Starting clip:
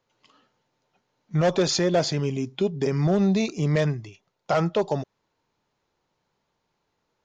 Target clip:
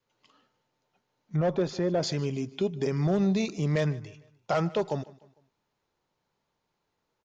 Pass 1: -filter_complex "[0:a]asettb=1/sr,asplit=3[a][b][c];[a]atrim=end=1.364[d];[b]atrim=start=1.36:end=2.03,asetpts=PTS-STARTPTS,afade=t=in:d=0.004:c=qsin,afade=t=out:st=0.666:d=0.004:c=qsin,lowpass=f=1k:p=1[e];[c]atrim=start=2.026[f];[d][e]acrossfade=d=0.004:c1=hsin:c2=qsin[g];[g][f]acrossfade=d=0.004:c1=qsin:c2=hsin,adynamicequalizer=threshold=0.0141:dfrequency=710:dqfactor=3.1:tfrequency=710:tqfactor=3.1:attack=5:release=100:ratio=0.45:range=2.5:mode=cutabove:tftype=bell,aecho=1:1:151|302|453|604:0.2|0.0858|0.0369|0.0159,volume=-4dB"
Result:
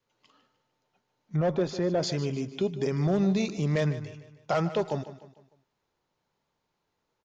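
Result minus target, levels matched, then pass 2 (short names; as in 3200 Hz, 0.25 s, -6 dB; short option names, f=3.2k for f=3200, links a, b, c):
echo-to-direct +7 dB
-filter_complex "[0:a]asettb=1/sr,asplit=3[a][b][c];[a]atrim=end=1.364[d];[b]atrim=start=1.36:end=2.03,asetpts=PTS-STARTPTS,afade=t=in:d=0.004:c=qsin,afade=t=out:st=0.666:d=0.004:c=qsin,lowpass=f=1k:p=1[e];[c]atrim=start=2.026[f];[d][e]acrossfade=d=0.004:c1=hsin:c2=qsin[g];[g][f]acrossfade=d=0.004:c1=qsin:c2=hsin,adynamicequalizer=threshold=0.0141:dfrequency=710:dqfactor=3.1:tfrequency=710:tqfactor=3.1:attack=5:release=100:ratio=0.45:range=2.5:mode=cutabove:tftype=bell,aecho=1:1:151|302|453:0.0891|0.0383|0.0165,volume=-4dB"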